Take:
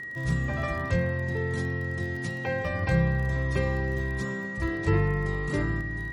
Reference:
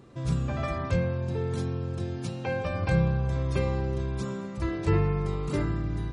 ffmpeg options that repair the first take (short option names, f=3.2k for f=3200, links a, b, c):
-af "adeclick=t=4,bandreject=f=1.9k:w=30,asetnsamples=n=441:p=0,asendcmd='5.81 volume volume 4dB',volume=0dB"